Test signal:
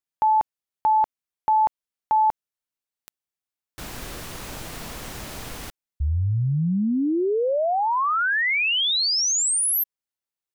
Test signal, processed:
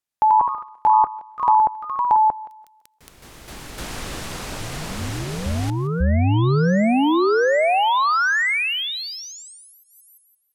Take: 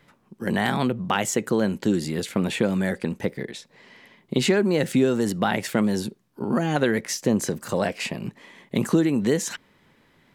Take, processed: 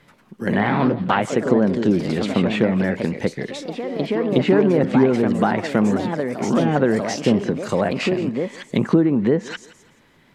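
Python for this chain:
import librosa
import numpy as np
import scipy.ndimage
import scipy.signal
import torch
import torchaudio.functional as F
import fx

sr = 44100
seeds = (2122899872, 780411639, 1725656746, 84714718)

y = fx.echo_thinned(x, sr, ms=171, feedback_pct=29, hz=210.0, wet_db=-19.0)
y = fx.env_lowpass_down(y, sr, base_hz=1300.0, full_db=-17.5)
y = fx.echo_pitch(y, sr, ms=111, semitones=2, count=3, db_per_echo=-6.0)
y = F.gain(torch.from_numpy(y), 4.0).numpy()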